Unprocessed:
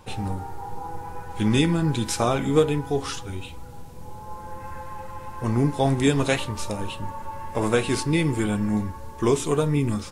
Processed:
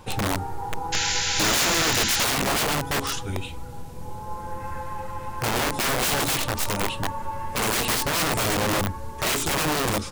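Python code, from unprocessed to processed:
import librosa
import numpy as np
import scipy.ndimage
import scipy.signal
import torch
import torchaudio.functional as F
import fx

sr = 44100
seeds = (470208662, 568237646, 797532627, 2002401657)

y = (np.mod(10.0 ** (22.0 / 20.0) * x + 1.0, 2.0) - 1.0) / 10.0 ** (22.0 / 20.0)
y = fx.spec_paint(y, sr, seeds[0], shape='noise', start_s=0.92, length_s=1.33, low_hz=1300.0, high_hz=7400.0, level_db=-29.0)
y = y * librosa.db_to_amplitude(3.5)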